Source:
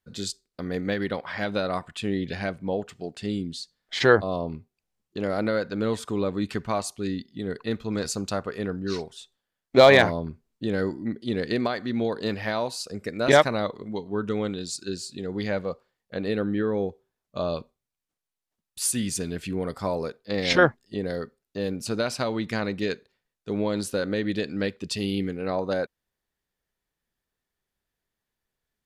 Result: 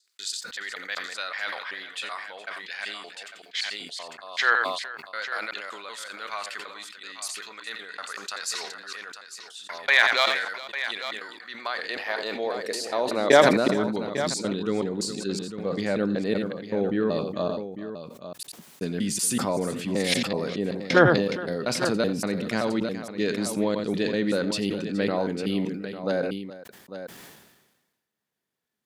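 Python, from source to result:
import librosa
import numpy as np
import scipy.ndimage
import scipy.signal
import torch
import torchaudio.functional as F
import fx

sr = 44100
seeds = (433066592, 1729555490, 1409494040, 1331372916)

p1 = fx.block_reorder(x, sr, ms=190.0, group=3)
p2 = p1 + fx.echo_multitap(p1, sr, ms=(88, 418, 850), db=(-17.0, -18.0, -11.5), dry=0)
p3 = fx.filter_sweep_highpass(p2, sr, from_hz=1500.0, to_hz=170.0, start_s=11.34, end_s=13.84, q=1.1)
y = fx.sustainer(p3, sr, db_per_s=48.0)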